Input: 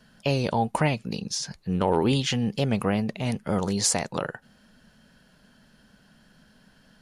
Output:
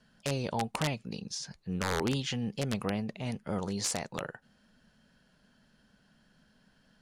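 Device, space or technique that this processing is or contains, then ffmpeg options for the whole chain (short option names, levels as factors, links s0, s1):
overflowing digital effects unit: -af "aeval=exprs='(mod(4.73*val(0)+1,2)-1)/4.73':c=same,lowpass=10000,volume=0.398"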